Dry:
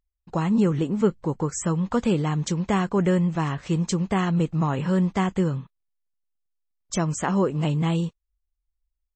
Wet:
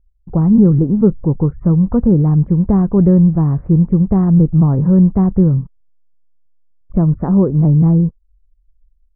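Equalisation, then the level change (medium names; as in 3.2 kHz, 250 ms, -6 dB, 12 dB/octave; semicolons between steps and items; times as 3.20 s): Gaussian low-pass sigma 6.5 samples; distance through air 90 m; tilt EQ -4.5 dB/octave; +1.5 dB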